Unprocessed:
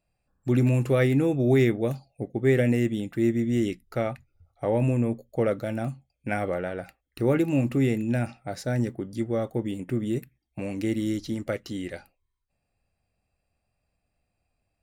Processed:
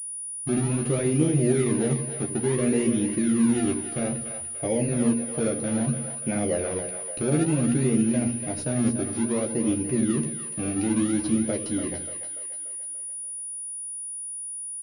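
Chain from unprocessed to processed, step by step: HPF 120 Hz 6 dB/oct; bell 1200 Hz -13.5 dB 2.2 oct; notches 60/120/180/240 Hz; limiter -24 dBFS, peak gain reduction 9.5 dB; flange 0.94 Hz, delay 3.3 ms, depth 9.5 ms, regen -77%; in parallel at -7 dB: decimation with a swept rate 31×, swing 100% 0.59 Hz; on the sum: doubler 13 ms -4 dB; split-band echo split 510 Hz, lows 81 ms, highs 0.291 s, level -8 dB; pulse-width modulation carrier 9700 Hz; gain +8.5 dB

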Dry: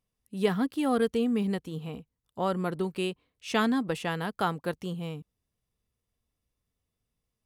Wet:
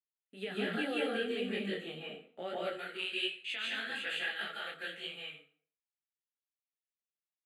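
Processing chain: block floating point 7-bit; Bessel low-pass 4300 Hz, order 2; gate with hold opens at -42 dBFS; HPF 650 Hz 12 dB/oct, from 2.54 s 1400 Hz; dynamic EQ 1200 Hz, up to -5 dB, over -46 dBFS, Q 0.87; limiter -29 dBFS, peak gain reduction 9.5 dB; fixed phaser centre 2400 Hz, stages 4; reverb RT60 0.50 s, pre-delay 0.137 s, DRR -4.5 dB; detuned doubles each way 41 cents; gain +7.5 dB

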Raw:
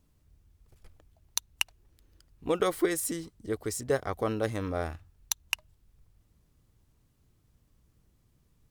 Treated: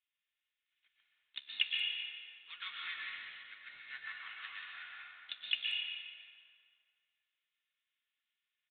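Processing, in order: inverse Chebyshev high-pass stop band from 550 Hz, stop band 60 dB; comb 2.8 ms, depth 62%; in parallel at -10.5 dB: companded quantiser 4-bit; on the sum: flange 0.26 Hz, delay 9.1 ms, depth 7.5 ms, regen -84%; harmoniser -3 st -16 dB, +3 st -6 dB, +7 st -12 dB; flange 1.4 Hz, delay 2.9 ms, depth 6.8 ms, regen -56%; plate-style reverb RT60 2.2 s, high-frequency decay 0.7×, pre-delay 0.105 s, DRR -3 dB; downsampling 8000 Hz; speakerphone echo 0.18 s, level -20 dB; gain +1.5 dB

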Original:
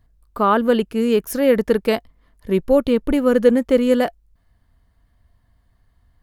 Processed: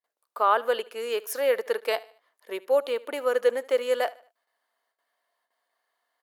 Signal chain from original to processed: gate with hold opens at -51 dBFS; HPF 510 Hz 24 dB/oct; on a send: feedback echo 75 ms, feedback 39%, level -21 dB; on the sum: gain -4 dB

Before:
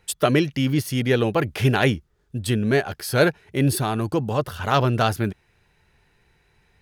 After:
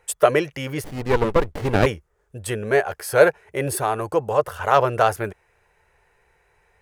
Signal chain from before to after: graphic EQ 125/250/500/1000/2000/4000/8000 Hz -4/-12/+10/+5/+4/-8/+5 dB; 0.84–1.86 running maximum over 33 samples; gain -2 dB

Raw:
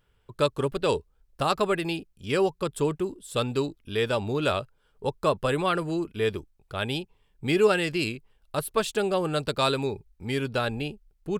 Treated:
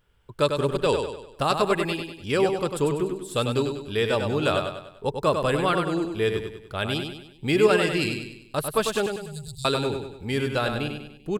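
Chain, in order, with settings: 9.06–9.65 inverse Chebyshev band-stop 310–2300 Hz, stop band 50 dB; feedback echo 98 ms, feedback 45%, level -6 dB; gain +1.5 dB

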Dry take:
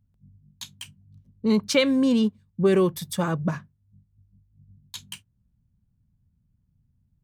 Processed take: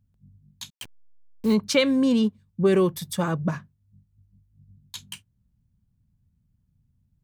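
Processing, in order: 0.7–1.54 level-crossing sampler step -37.5 dBFS

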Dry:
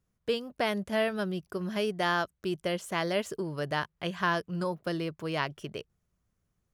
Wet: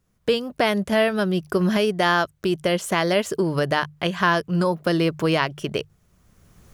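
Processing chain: recorder AGC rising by 18 dB/s; notches 50/100/150 Hz; gain +8.5 dB

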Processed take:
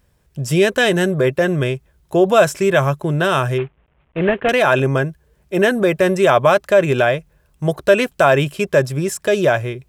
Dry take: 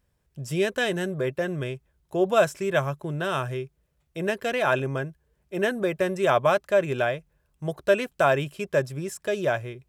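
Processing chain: 3.58–4.49 CVSD 16 kbps; in parallel at +3 dB: limiter -19 dBFS, peak gain reduction 11 dB; on the sum: gain +4 dB

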